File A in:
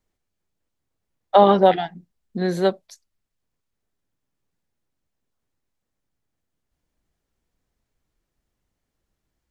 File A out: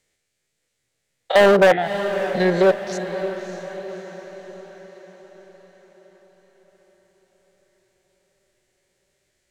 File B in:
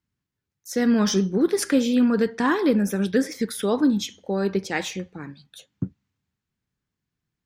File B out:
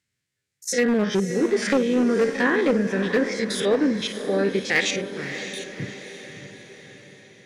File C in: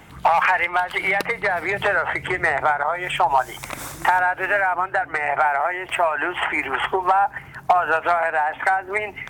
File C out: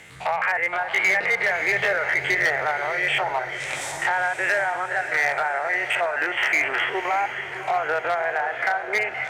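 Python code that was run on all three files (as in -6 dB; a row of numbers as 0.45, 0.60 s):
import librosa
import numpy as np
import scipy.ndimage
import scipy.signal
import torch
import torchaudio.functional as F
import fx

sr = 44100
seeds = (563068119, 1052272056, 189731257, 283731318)

y = fx.spec_steps(x, sr, hold_ms=50)
y = fx.env_lowpass_down(y, sr, base_hz=1400.0, full_db=-17.5)
y = fx.graphic_eq(y, sr, hz=(125, 500, 1000, 2000, 4000, 8000), db=(10, 10, -6, 11, 5, 11))
y = np.clip(y, -10.0 ** (-10.0 / 20.0), 10.0 ** (-10.0 / 20.0))
y = fx.low_shelf(y, sr, hz=450.0, db=-9.5)
y = fx.echo_diffused(y, sr, ms=595, feedback_pct=53, wet_db=-10)
y = y * 10.0 ** (-24 / 20.0) / np.sqrt(np.mean(np.square(y)))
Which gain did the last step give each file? +4.5, +1.0, -4.0 dB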